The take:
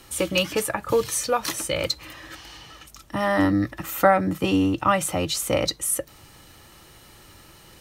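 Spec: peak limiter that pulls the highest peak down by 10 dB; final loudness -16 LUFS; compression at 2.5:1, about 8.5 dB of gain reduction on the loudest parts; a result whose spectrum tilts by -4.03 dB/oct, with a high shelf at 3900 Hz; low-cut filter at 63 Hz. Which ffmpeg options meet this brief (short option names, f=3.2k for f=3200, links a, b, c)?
-af "highpass=63,highshelf=f=3.9k:g=-3.5,acompressor=threshold=-24dB:ratio=2.5,volume=14dB,alimiter=limit=-5.5dB:level=0:latency=1"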